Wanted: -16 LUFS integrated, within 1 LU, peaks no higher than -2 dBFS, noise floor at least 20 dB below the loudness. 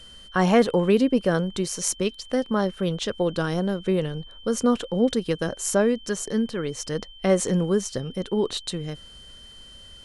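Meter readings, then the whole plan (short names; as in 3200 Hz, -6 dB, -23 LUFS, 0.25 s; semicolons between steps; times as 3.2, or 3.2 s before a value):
steady tone 3100 Hz; tone level -45 dBFS; loudness -24.5 LUFS; peak -5.5 dBFS; loudness target -16.0 LUFS
-> notch 3100 Hz, Q 30; gain +8.5 dB; limiter -2 dBFS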